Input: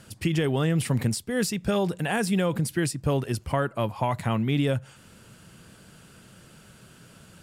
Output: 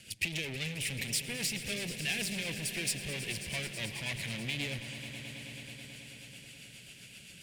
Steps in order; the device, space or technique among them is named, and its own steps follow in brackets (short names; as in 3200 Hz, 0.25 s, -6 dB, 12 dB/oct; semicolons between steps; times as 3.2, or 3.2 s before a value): overdriven rotary cabinet (tube stage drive 33 dB, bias 0.6; rotary speaker horn 7.5 Hz); resonant high shelf 1700 Hz +11 dB, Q 3; swelling echo 0.108 s, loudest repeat 5, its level -15 dB; gain -4.5 dB